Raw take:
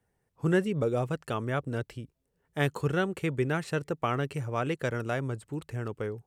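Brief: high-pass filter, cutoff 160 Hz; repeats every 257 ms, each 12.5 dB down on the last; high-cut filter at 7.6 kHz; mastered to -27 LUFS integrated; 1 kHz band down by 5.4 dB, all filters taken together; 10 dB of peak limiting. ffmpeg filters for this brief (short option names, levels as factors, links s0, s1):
-af "highpass=160,lowpass=7600,equalizer=f=1000:t=o:g=-8,alimiter=limit=0.0708:level=0:latency=1,aecho=1:1:257|514|771:0.237|0.0569|0.0137,volume=2.82"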